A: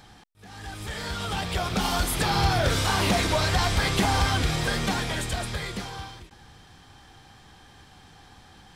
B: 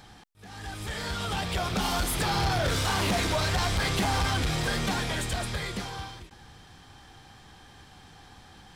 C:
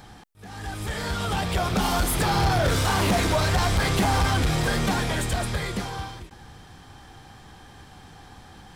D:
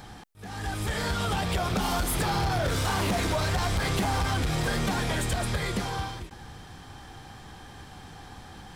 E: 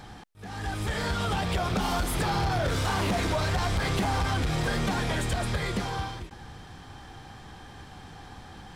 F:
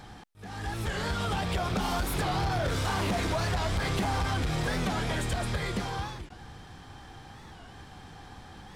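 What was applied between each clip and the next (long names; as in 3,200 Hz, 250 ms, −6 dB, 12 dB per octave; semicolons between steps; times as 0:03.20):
soft clipping −21.5 dBFS, distortion −13 dB
parametric band 3,800 Hz −4.5 dB 2.3 octaves; level +5.5 dB
downward compressor, threshold −26 dBFS, peak gain reduction 7.5 dB; level +1.5 dB
high-shelf EQ 8,400 Hz −7.5 dB
wow of a warped record 45 rpm, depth 160 cents; level −2 dB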